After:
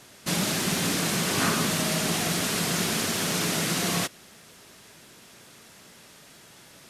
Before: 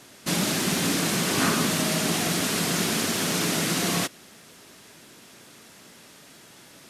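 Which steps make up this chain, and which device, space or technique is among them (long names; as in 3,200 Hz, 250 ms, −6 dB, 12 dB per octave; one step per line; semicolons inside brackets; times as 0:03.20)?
low shelf boost with a cut just above (low-shelf EQ 72 Hz +6 dB; parametric band 280 Hz −4 dB 0.69 octaves)
level −1 dB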